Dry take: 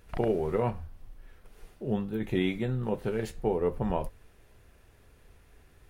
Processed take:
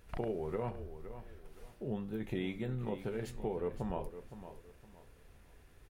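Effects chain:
downward compressor 2 to 1, threshold −35 dBFS, peak gain reduction 7.5 dB
on a send: repeating echo 514 ms, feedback 30%, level −12 dB
on the sum: level −3 dB

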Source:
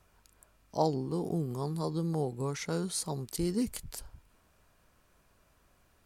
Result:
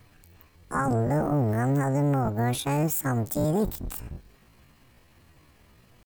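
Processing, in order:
sub-octave generator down 1 octave, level +3 dB
pitch shifter +9.5 semitones
brickwall limiter −24.5 dBFS, peak gain reduction 9.5 dB
level +7.5 dB

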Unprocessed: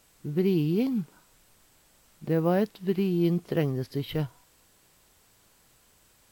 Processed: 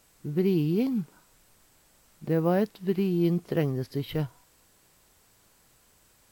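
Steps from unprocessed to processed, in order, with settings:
parametric band 3,200 Hz −2 dB

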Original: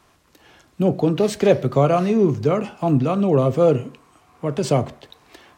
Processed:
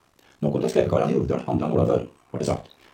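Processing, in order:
flutter between parallel walls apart 6.5 metres, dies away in 0.46 s
ring modulation 32 Hz
tempo change 1.9×
level −2 dB

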